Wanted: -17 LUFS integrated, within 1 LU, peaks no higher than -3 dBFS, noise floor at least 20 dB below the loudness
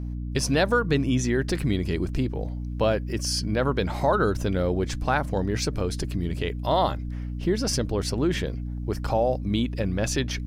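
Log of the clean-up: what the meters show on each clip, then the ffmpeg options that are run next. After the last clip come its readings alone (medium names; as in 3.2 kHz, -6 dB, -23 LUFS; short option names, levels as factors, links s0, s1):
hum 60 Hz; highest harmonic 300 Hz; hum level -29 dBFS; loudness -26.0 LUFS; peak level -9.5 dBFS; loudness target -17.0 LUFS
-> -af "bandreject=f=60:t=h:w=6,bandreject=f=120:t=h:w=6,bandreject=f=180:t=h:w=6,bandreject=f=240:t=h:w=6,bandreject=f=300:t=h:w=6"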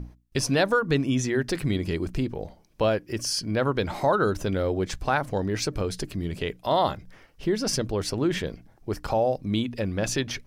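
hum not found; loudness -26.5 LUFS; peak level -10.5 dBFS; loudness target -17.0 LUFS
-> -af "volume=2.99,alimiter=limit=0.708:level=0:latency=1"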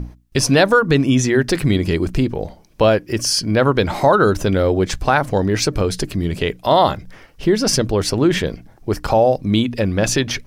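loudness -17.5 LUFS; peak level -3.0 dBFS; noise floor -47 dBFS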